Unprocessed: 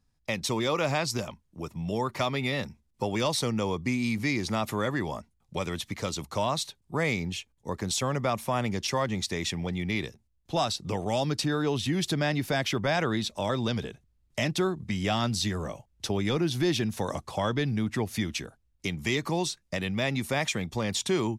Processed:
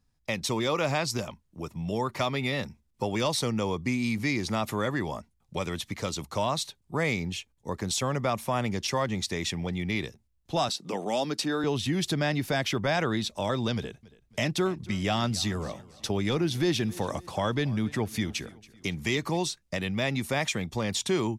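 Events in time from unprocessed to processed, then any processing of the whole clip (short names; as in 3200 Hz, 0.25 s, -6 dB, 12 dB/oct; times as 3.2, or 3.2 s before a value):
10.69–11.64 HPF 190 Hz 24 dB/oct
13.75–19.37 feedback echo 0.279 s, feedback 46%, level -21 dB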